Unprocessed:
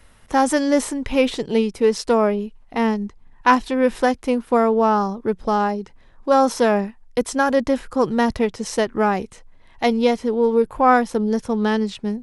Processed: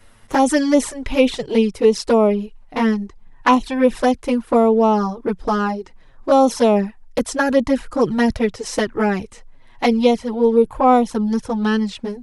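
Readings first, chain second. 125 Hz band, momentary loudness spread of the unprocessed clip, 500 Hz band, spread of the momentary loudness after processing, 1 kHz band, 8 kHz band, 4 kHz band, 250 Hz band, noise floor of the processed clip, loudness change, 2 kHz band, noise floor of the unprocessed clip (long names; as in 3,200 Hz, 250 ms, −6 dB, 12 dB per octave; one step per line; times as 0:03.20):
+3.0 dB, 7 LU, +2.0 dB, 9 LU, 0.0 dB, +1.5 dB, +2.0 dB, +3.0 dB, −46 dBFS, +2.0 dB, −0.5 dB, −49 dBFS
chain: flanger swept by the level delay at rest 9.4 ms, full sweep at −12.5 dBFS
level +4.5 dB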